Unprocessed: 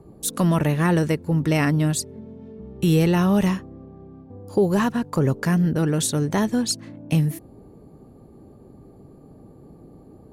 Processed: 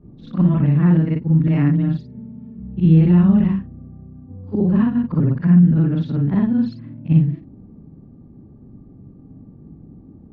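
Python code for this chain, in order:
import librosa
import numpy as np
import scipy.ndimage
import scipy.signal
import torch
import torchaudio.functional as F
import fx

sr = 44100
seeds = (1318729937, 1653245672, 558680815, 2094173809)

y = fx.frame_reverse(x, sr, frame_ms=125.0)
y = scipy.signal.sosfilt(scipy.signal.bessel(8, 2200.0, 'lowpass', norm='mag', fs=sr, output='sos'), y)
y = fx.low_shelf_res(y, sr, hz=330.0, db=10.0, q=1.5)
y = F.gain(torch.from_numpy(y), -2.5).numpy()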